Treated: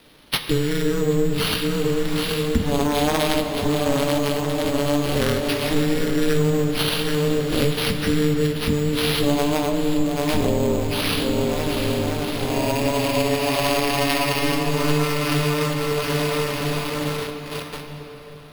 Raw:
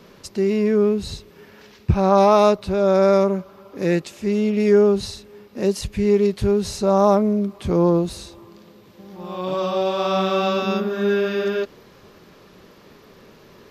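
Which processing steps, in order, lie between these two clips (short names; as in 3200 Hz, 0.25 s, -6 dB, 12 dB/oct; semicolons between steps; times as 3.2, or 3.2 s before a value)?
tracing distortion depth 0.2 ms; swung echo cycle 0.962 s, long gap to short 1.5:1, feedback 34%, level -12 dB; gate -39 dBFS, range -12 dB; bell 6800 Hz +14 dB 2 oct; in parallel at -4 dB: requantised 6-bit, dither none; on the sum: compressor 12:1, threshold -24 dBFS, peak gain reduction 20.5 dB; ring modulator 200 Hz; varispeed -26%; careless resampling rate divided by 6×, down none, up hold; reverb RT60 4.6 s, pre-delay 12 ms, DRR 5 dB; gain +8.5 dB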